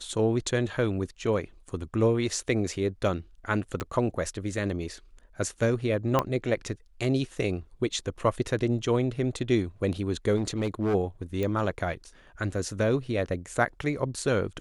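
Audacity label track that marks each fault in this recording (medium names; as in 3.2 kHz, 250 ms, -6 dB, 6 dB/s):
3.800000	3.800000	pop -18 dBFS
6.190000	6.190000	pop -10 dBFS
10.360000	10.950000	clipped -22.5 dBFS
11.430000	11.430000	pop -18 dBFS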